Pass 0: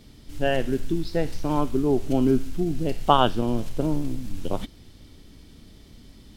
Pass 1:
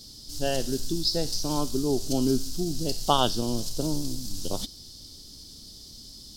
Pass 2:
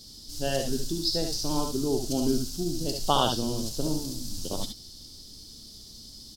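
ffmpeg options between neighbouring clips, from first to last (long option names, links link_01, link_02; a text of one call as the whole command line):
ffmpeg -i in.wav -af "highshelf=frequency=3300:width_type=q:width=3:gain=14,volume=-4dB" out.wav
ffmpeg -i in.wav -af "aecho=1:1:64|73:0.398|0.473,volume=-2dB" out.wav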